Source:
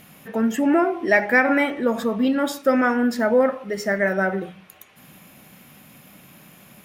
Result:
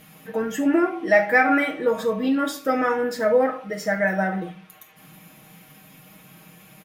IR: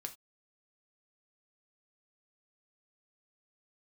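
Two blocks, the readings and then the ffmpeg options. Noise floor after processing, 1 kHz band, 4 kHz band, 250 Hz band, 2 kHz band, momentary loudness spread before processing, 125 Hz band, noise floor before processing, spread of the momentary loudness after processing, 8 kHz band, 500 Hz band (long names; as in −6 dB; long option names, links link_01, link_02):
−50 dBFS, +0.5 dB, −1.5 dB, −3.0 dB, −1.5 dB, 8 LU, 0.0 dB, −50 dBFS, 11 LU, −1.0 dB, −0.5 dB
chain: -filter_complex "[0:a]aecho=1:1:6.4:0.83[link_01];[1:a]atrim=start_sample=2205[link_02];[link_01][link_02]afir=irnorm=-1:irlink=0"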